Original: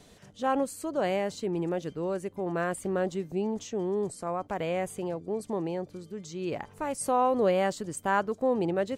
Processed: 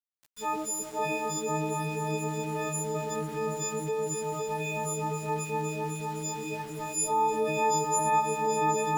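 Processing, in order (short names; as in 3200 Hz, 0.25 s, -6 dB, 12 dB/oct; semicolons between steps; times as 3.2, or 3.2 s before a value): frequency quantiser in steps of 6 st; ripple EQ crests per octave 0.72, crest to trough 11 dB; repeats that get brighter 0.258 s, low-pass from 400 Hz, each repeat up 2 oct, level 0 dB; reverb RT60 2.6 s, pre-delay 4 ms, DRR 19.5 dB; sample gate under -35.5 dBFS; gain -7 dB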